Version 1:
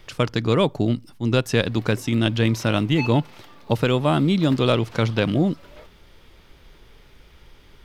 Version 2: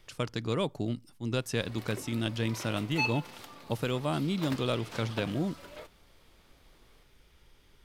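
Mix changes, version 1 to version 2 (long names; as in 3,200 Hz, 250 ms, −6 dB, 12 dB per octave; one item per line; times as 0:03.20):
speech −11.5 dB
master: add parametric band 9,700 Hz +7.5 dB 1.4 octaves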